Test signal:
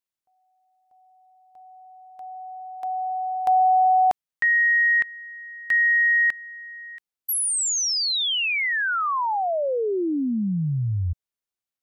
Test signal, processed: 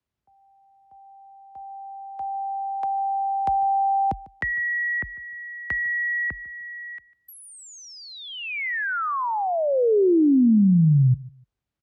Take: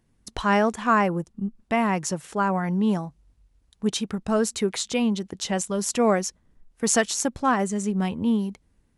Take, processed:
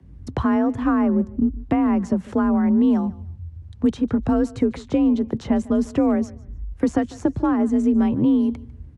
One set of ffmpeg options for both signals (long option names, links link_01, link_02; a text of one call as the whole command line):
ffmpeg -i in.wav -filter_complex "[0:a]aemphasis=mode=reproduction:type=riaa,acrossover=split=99|350|1800[link_01][link_02][link_03][link_04];[link_01]acompressor=threshold=-38dB:ratio=4[link_05];[link_02]acompressor=threshold=-28dB:ratio=4[link_06];[link_03]acompressor=threshold=-35dB:ratio=4[link_07];[link_04]acompressor=threshold=-55dB:ratio=4[link_08];[link_05][link_06][link_07][link_08]amix=inputs=4:normalize=0,afreqshift=39,aecho=1:1:149|298:0.0891|0.0205,volume=7.5dB" out.wav